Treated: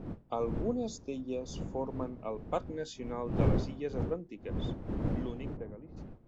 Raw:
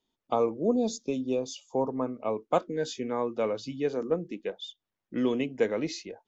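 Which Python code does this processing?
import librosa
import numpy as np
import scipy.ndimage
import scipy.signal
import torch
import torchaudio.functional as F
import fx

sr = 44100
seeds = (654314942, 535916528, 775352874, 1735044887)

y = fx.fade_out_tail(x, sr, length_s=2.06)
y = fx.dmg_wind(y, sr, seeds[0], corner_hz=230.0, level_db=-29.0)
y = fx.lowpass(y, sr, hz=1200.0, slope=12, at=(5.56, 5.96), fade=0.02)
y = F.gain(torch.from_numpy(y), -8.0).numpy()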